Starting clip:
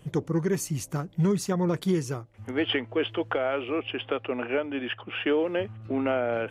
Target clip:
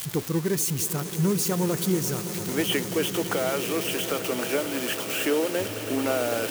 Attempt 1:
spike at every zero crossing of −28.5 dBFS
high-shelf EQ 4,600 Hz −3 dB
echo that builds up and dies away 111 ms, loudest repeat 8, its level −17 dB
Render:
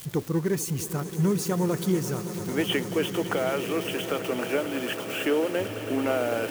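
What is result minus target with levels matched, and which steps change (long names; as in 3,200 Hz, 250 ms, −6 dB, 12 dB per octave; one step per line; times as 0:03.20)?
spike at every zero crossing: distortion −9 dB
change: spike at every zero crossing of −19.5 dBFS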